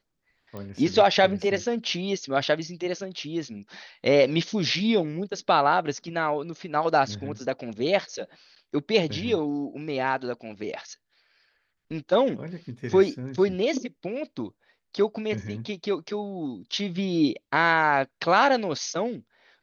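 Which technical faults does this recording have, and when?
0.57 s: pop -24 dBFS

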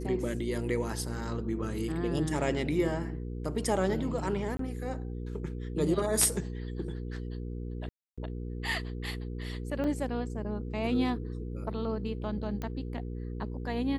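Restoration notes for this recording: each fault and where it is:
hum 60 Hz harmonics 8 -37 dBFS
4.57–4.59 s: dropout 23 ms
7.89–8.18 s: dropout 286 ms
9.84 s: dropout 4.1 ms
12.62 s: pop -23 dBFS

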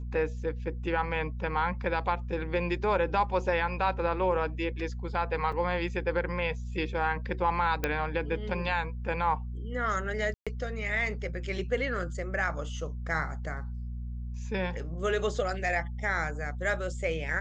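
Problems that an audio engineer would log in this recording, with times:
hum 60 Hz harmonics 4 -36 dBFS
5.52 s: dropout 4.4 ms
7.84 s: pop -13 dBFS
10.34–10.47 s: dropout 126 ms

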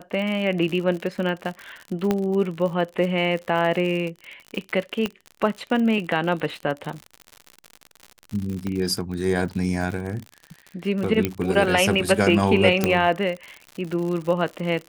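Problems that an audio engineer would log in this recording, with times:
crackle 72 per s -29 dBFS
2.11 s: pop -9 dBFS
5.06 s: pop -12 dBFS
8.67 s: pop -16 dBFS
11.25 s: pop -8 dBFS
12.84 s: pop -5 dBFS

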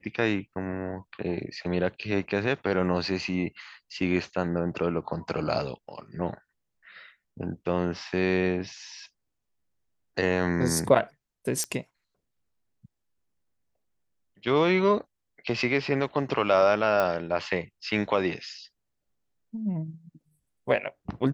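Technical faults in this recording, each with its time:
11.64 s: pop -15 dBFS
17.00 s: pop -13 dBFS

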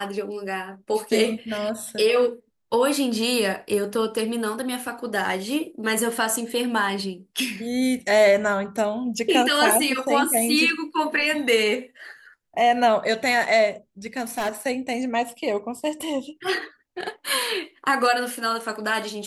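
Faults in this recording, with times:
14.06–14.50 s: clipped -21.5 dBFS

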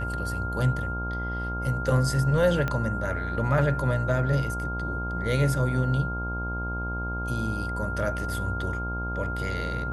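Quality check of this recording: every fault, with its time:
buzz 60 Hz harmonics 18 -32 dBFS
whine 1.4 kHz -32 dBFS
2.68 s: pop -15 dBFS

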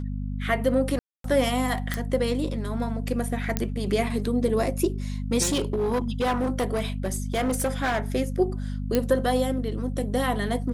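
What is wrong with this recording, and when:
hum 50 Hz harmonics 5 -30 dBFS
0.99–1.24 s: dropout 253 ms
1.94 s: pop
3.57 s: pop -9 dBFS
5.42–8.00 s: clipped -20.5 dBFS
8.95 s: pop -8 dBFS

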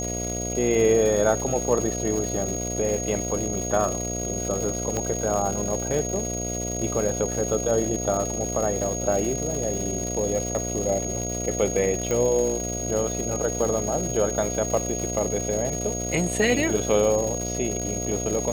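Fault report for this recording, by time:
buzz 60 Hz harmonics 12 -31 dBFS
crackle 410 per s -29 dBFS
whine 6.6 kHz -30 dBFS
4.97 s: pop -13 dBFS
12.11 s: pop

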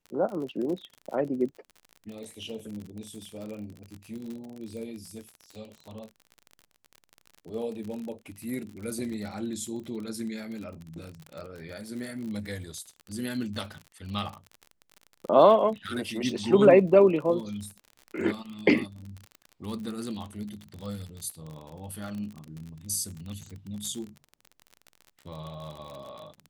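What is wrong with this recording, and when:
crackle 46 per s -35 dBFS

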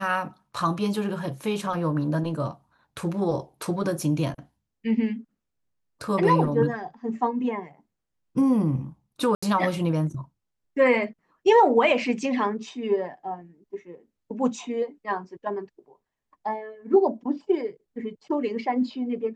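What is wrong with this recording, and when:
9.35–9.43 s: dropout 75 ms

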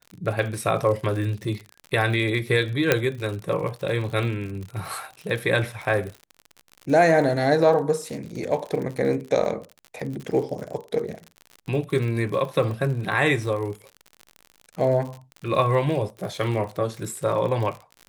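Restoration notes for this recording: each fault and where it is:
crackle 65 per s -31 dBFS
2.92 s: pop -3 dBFS

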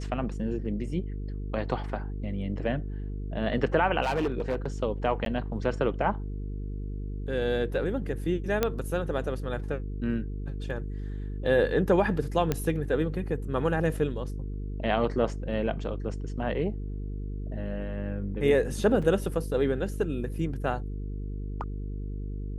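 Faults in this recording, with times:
buzz 50 Hz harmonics 9 -34 dBFS
4.02–4.68 s: clipped -23 dBFS
5.25–5.26 s: dropout 12 ms
8.63 s: pop -10 dBFS
12.52 s: pop -12 dBFS
19.02 s: dropout 4.7 ms

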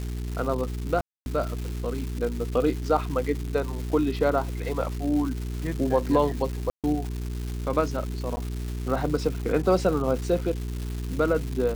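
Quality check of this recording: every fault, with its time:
crackle 480 per s -32 dBFS
hum 60 Hz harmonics 7 -31 dBFS
1.01–1.26 s: dropout 251 ms
6.70–6.84 s: dropout 137 ms
8.36–8.37 s: dropout 10 ms

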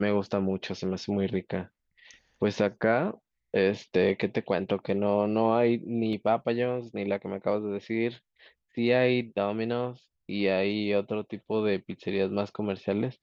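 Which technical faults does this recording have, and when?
6.13 s: dropout 2 ms

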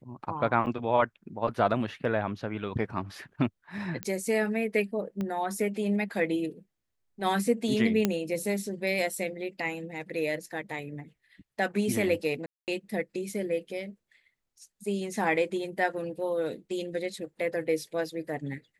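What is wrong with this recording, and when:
0.66–0.67 s: dropout 7.1 ms
4.03 s: pop -17 dBFS
5.21 s: pop -21 dBFS
8.05 s: pop -10 dBFS
12.46–12.68 s: dropout 218 ms

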